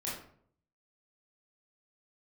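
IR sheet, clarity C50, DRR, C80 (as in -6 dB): 3.0 dB, -7.5 dB, 7.5 dB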